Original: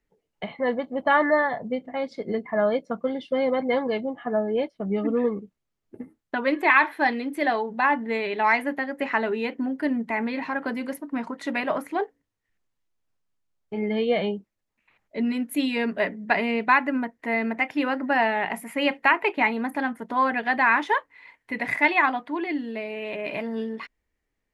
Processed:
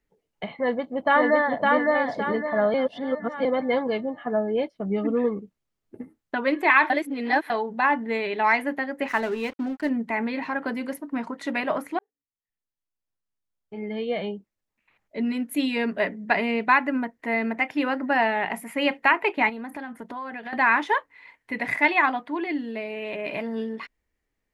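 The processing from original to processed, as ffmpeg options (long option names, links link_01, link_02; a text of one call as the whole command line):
ffmpeg -i in.wav -filter_complex "[0:a]asplit=2[link_01][link_02];[link_02]afade=type=in:start_time=0.56:duration=0.01,afade=type=out:start_time=1.68:duration=0.01,aecho=0:1:560|1120|1680|2240|2800:0.841395|0.336558|0.134623|0.0538493|0.0215397[link_03];[link_01][link_03]amix=inputs=2:normalize=0,asplit=3[link_04][link_05][link_06];[link_04]afade=type=out:start_time=9.07:duration=0.02[link_07];[link_05]aeval=exprs='sgn(val(0))*max(abs(val(0))-0.00841,0)':channel_layout=same,afade=type=in:start_time=9.07:duration=0.02,afade=type=out:start_time=9.88:duration=0.02[link_08];[link_06]afade=type=in:start_time=9.88:duration=0.02[link_09];[link_07][link_08][link_09]amix=inputs=3:normalize=0,asettb=1/sr,asplit=3[link_10][link_11][link_12];[link_10]atrim=end=19.494[link_13];[link_11]atrim=start=19.49:end=20.53,asetpts=PTS-STARTPTS,afade=type=in:duration=0.004:curve=qsin,afade=type=out:start_time=1.036:duration=0.004:curve=qsin,acompressor=threshold=-32dB:ratio=6:attack=3.2:release=140:knee=1:detection=peak[link_14];[link_12]atrim=start=20.526[link_15];[link_13][link_14]acrossfade=duration=0.004:curve1=hsin:curve2=qsin[link_16];[link_16][link_15]acrossfade=duration=0.004:curve1=qsin:curve2=hsin,asplit=6[link_17][link_18][link_19][link_20][link_21][link_22];[link_17]atrim=end=2.742[link_23];[link_18]atrim=start=2.738:end=3.452,asetpts=PTS-STARTPTS,areverse[link_24];[link_19]atrim=start=3.448:end=6.902[link_25];[link_20]atrim=start=6.898:end=7.502,asetpts=PTS-STARTPTS,areverse[link_26];[link_21]atrim=start=7.498:end=11.99,asetpts=PTS-STARTPTS,afade=type=out:start_time=4.488:duration=0.004:curve=hsin[link_27];[link_22]atrim=start=11.99,asetpts=PTS-STARTPTS,afade=type=in:duration=3.65[link_28];[link_23][link_24]acrossfade=duration=0.004:curve1=hsin:curve2=hsin[link_29];[link_29][link_25]acrossfade=duration=0.004:curve1=hsin:curve2=hsin[link_30];[link_30][link_26]acrossfade=duration=0.004:curve1=hsin:curve2=hsin[link_31];[link_27][link_28]concat=n=2:v=0:a=1[link_32];[link_31][link_32]acrossfade=duration=0.004:curve1=hsin:curve2=hsin" out.wav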